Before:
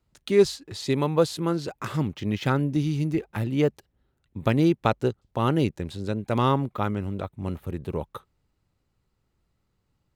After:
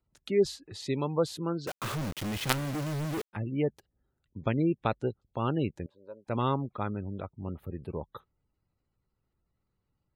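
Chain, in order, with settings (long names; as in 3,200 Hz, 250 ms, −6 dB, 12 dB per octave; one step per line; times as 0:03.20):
gate on every frequency bin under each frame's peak −30 dB strong
0:01.67–0:03.33: log-companded quantiser 2 bits
0:05.86–0:06.27: pair of resonant band-passes 740 Hz, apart 0.72 octaves
level −6.5 dB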